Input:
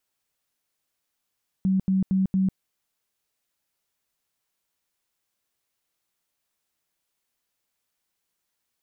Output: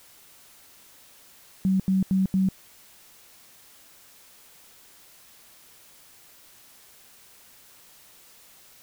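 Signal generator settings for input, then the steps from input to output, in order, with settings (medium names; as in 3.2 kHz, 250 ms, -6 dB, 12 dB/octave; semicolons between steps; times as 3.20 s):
tone bursts 190 Hz, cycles 28, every 0.23 s, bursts 4, -18.5 dBFS
added noise white -53 dBFS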